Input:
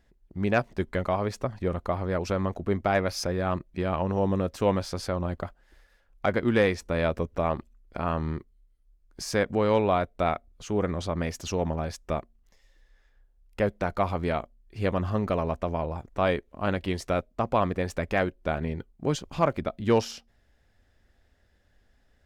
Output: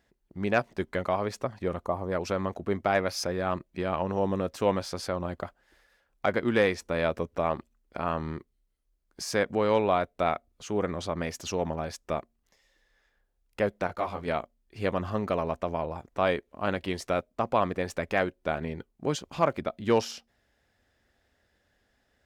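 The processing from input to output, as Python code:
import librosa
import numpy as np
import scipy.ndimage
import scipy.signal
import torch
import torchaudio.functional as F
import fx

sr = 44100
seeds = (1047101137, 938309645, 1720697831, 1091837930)

y = fx.spec_box(x, sr, start_s=1.85, length_s=0.27, low_hz=1200.0, high_hz=5600.0, gain_db=-11)
y = fx.detune_double(y, sr, cents=34, at=(13.87, 14.28))
y = fx.highpass(y, sr, hz=87.0, slope=6)
y = fx.low_shelf(y, sr, hz=220.0, db=-5.0)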